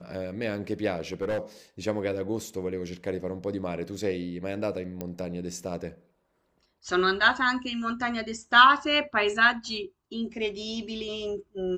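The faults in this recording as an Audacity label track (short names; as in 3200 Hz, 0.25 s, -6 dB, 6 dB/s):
0.970000	1.390000	clipped -25 dBFS
5.010000	5.010000	pop -19 dBFS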